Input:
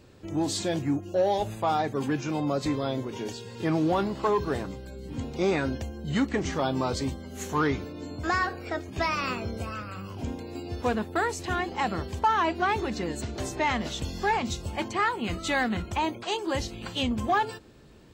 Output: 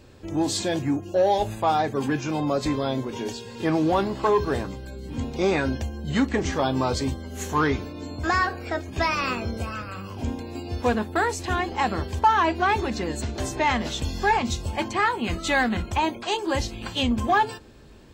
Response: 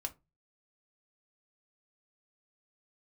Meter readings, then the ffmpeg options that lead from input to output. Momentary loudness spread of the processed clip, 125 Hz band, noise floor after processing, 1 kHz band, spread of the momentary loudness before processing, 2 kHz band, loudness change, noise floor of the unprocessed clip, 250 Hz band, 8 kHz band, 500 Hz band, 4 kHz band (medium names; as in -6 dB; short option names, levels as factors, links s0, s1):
10 LU, +3.5 dB, -40 dBFS, +4.5 dB, 10 LU, +4.0 dB, +4.0 dB, -42 dBFS, +3.0 dB, +3.5 dB, +3.5 dB, +3.5 dB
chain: -filter_complex "[0:a]asplit=2[s0][s1];[1:a]atrim=start_sample=2205,asetrate=70560,aresample=44100[s2];[s1][s2]afir=irnorm=-1:irlink=0,volume=1.12[s3];[s0][s3]amix=inputs=2:normalize=0"